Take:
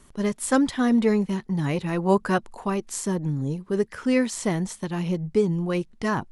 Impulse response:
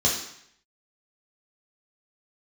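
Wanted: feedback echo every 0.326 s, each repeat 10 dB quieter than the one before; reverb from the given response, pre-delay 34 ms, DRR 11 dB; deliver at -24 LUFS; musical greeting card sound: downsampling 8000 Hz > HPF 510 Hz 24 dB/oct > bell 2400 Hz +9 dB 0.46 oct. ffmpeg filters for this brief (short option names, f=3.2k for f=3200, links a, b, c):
-filter_complex "[0:a]aecho=1:1:326|652|978|1304:0.316|0.101|0.0324|0.0104,asplit=2[a][b];[1:a]atrim=start_sample=2205,adelay=34[c];[b][c]afir=irnorm=-1:irlink=0,volume=-24dB[d];[a][d]amix=inputs=2:normalize=0,aresample=8000,aresample=44100,highpass=f=510:w=0.5412,highpass=f=510:w=1.3066,equalizer=f=2.4k:t=o:w=0.46:g=9,volume=6dB"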